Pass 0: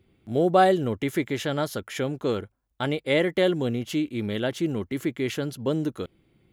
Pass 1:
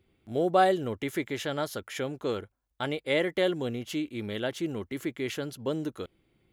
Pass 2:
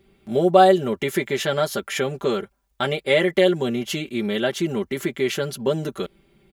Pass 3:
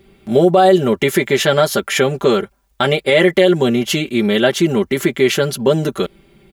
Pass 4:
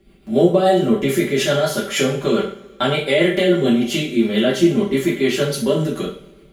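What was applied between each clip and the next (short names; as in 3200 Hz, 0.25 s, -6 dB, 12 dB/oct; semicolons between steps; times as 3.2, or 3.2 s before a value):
bell 160 Hz -5 dB 2 oct; gain -3 dB
comb 5.1 ms, depth 86%; in parallel at -2.5 dB: compressor, threshold -32 dBFS, peak gain reduction 17 dB; on the sum: gain +4 dB
maximiser +10 dB; gain -1 dB
rotary speaker horn 7 Hz; two-slope reverb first 0.43 s, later 1.8 s, from -22 dB, DRR -4.5 dB; gain -7 dB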